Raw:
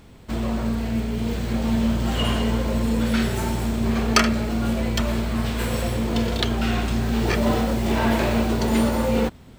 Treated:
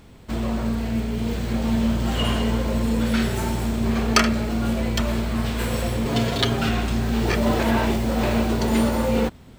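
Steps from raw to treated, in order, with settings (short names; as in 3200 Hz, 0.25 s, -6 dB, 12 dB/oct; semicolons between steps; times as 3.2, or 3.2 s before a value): 6.05–6.69 comb 7.3 ms, depth 97%; 7.59–8.23 reverse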